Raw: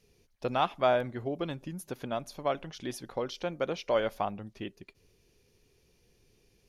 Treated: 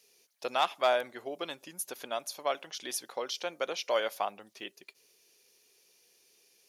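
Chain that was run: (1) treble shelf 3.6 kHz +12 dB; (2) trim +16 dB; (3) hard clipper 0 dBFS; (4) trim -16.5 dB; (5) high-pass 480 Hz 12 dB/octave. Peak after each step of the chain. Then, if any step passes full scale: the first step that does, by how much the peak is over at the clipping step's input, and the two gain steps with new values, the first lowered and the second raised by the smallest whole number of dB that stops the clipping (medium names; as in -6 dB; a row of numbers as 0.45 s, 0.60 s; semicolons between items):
-11.5 dBFS, +4.5 dBFS, 0.0 dBFS, -16.5 dBFS, -13.5 dBFS; step 2, 4.5 dB; step 2 +11 dB, step 4 -11.5 dB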